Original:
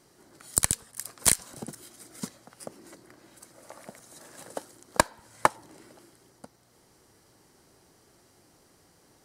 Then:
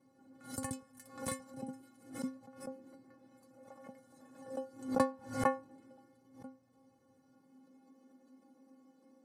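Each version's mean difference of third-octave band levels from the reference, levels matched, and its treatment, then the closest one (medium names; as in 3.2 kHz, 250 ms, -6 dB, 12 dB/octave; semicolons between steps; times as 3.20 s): 7.5 dB: tilt shelf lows +10 dB, about 1.5 kHz; high-pass sweep 110 Hz -> 230 Hz, 7.04–7.92 s; inharmonic resonator 260 Hz, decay 0.3 s, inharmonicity 0.008; swell ahead of each attack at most 120 dB/s; trim +1 dB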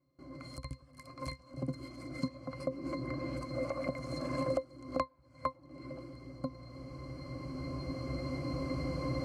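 12.0 dB: recorder AGC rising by 6.8 dB/s; gate with hold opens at -49 dBFS; compression 4:1, threshold -38 dBFS, peak gain reduction 27.5 dB; pitch-class resonator C, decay 0.12 s; trim +16 dB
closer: first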